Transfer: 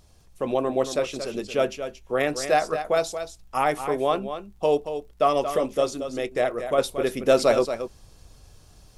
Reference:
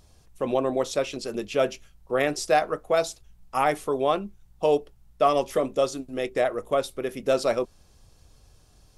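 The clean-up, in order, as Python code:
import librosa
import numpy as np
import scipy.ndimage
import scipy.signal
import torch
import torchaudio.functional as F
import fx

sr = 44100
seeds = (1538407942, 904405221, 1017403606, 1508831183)

y = fx.fix_declick_ar(x, sr, threshold=6.5)
y = fx.fix_echo_inverse(y, sr, delay_ms=229, level_db=-9.5)
y = fx.gain(y, sr, db=fx.steps((0.0, 0.0), (6.78, -4.5)))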